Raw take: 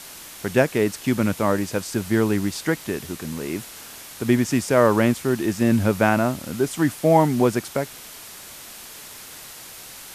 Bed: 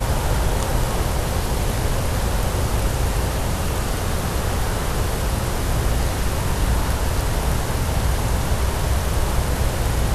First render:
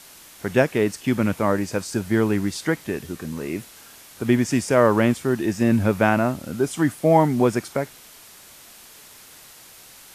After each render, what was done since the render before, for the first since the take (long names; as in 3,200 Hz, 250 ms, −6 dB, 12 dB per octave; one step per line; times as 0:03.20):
noise reduction from a noise print 6 dB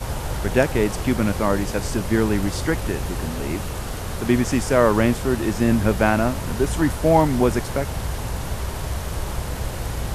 mix in bed −6.5 dB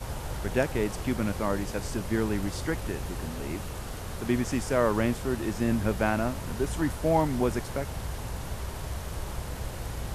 level −8 dB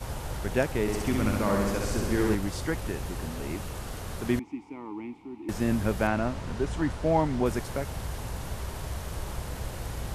0:00.81–0:02.35: flutter between parallel walls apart 11.2 metres, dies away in 1.3 s
0:04.39–0:05.49: formant filter u
0:06.07–0:07.46: high-frequency loss of the air 69 metres